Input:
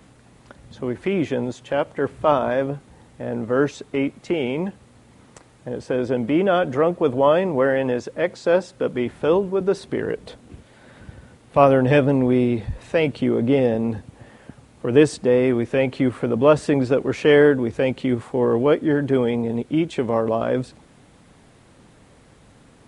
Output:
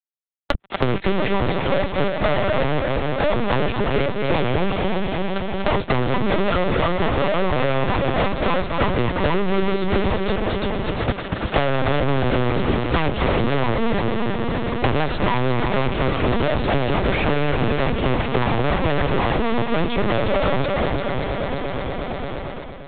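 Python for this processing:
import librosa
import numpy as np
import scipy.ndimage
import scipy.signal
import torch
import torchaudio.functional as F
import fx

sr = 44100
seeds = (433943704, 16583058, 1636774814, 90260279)

y = fx.lower_of_two(x, sr, delay_ms=5.1)
y = fx.fuzz(y, sr, gain_db=38.0, gate_db=-40.0)
y = fx.dynamic_eq(y, sr, hz=140.0, q=3.5, threshold_db=-33.0, ratio=4.0, max_db=4)
y = fx.echo_heads(y, sr, ms=116, heads='second and third', feedback_pct=49, wet_db=-7.0)
y = fx.lpc_vocoder(y, sr, seeds[0], excitation='pitch_kept', order=10)
y = fx.band_squash(y, sr, depth_pct=100)
y = y * librosa.db_to_amplitude(-5.5)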